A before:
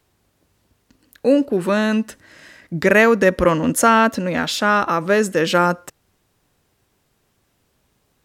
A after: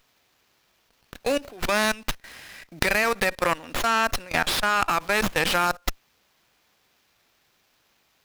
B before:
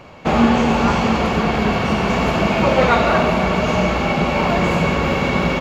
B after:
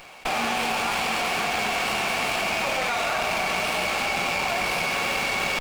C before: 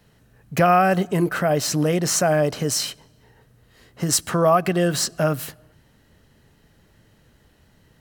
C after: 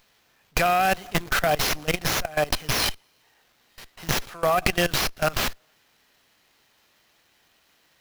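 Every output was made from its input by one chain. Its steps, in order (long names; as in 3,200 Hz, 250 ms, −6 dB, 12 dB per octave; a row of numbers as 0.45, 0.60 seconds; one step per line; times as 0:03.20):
one-sided soft clipper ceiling −3.5 dBFS
high-pass filter 97 Hz 24 dB per octave
first difference
downward compressor 2 to 1, threshold −35 dBFS
hollow resonant body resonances 740/2,400 Hz, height 8 dB, ringing for 25 ms
output level in coarse steps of 20 dB
windowed peak hold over 5 samples
loudness normalisation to −24 LKFS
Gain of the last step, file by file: +18.0, +15.0, +20.0 decibels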